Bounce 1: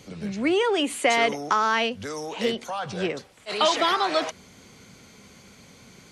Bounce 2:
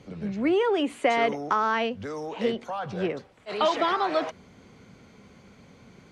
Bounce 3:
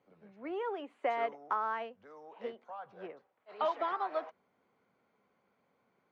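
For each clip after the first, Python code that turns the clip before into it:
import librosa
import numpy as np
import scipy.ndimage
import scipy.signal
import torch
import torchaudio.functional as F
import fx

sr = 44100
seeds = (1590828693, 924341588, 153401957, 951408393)

y1 = fx.lowpass(x, sr, hz=1400.0, slope=6)
y2 = fx.bandpass_q(y1, sr, hz=910.0, q=0.93)
y2 = fx.upward_expand(y2, sr, threshold_db=-40.0, expansion=1.5)
y2 = y2 * 10.0 ** (-6.5 / 20.0)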